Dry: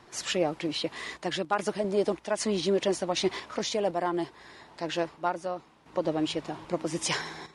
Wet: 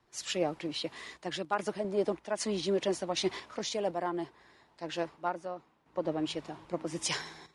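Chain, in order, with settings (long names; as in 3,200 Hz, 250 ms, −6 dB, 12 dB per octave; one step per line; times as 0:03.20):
multiband upward and downward expander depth 40%
level −4.5 dB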